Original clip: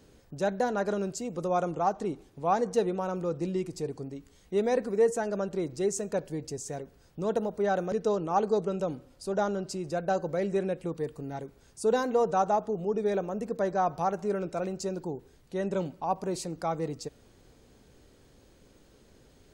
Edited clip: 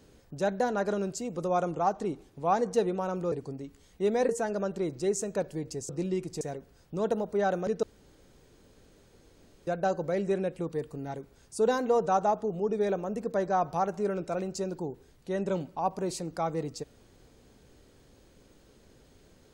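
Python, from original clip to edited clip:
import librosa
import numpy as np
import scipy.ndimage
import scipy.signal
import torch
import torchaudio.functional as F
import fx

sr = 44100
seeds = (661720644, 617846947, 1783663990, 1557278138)

y = fx.edit(x, sr, fx.move(start_s=3.32, length_s=0.52, to_s=6.66),
    fx.cut(start_s=4.81, length_s=0.25),
    fx.room_tone_fill(start_s=8.08, length_s=1.84), tone=tone)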